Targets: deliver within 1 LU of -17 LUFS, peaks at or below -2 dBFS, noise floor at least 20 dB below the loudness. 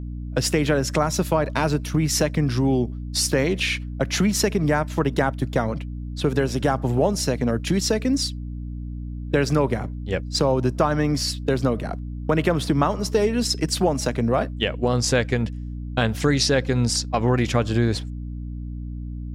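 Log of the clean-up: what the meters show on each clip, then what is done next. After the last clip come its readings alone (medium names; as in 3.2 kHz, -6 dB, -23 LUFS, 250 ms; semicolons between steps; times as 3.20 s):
hum 60 Hz; highest harmonic 300 Hz; hum level -29 dBFS; loudness -22.5 LUFS; peak level -4.5 dBFS; loudness target -17.0 LUFS
-> hum notches 60/120/180/240/300 Hz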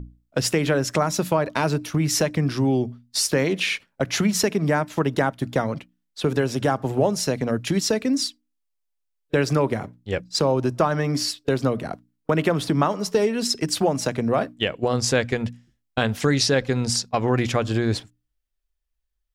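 hum not found; loudness -23.0 LUFS; peak level -5.5 dBFS; loudness target -17.0 LUFS
-> trim +6 dB; peak limiter -2 dBFS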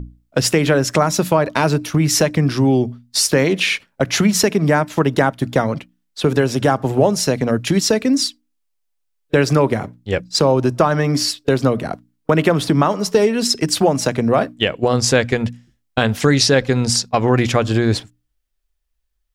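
loudness -17.0 LUFS; peak level -2.0 dBFS; noise floor -70 dBFS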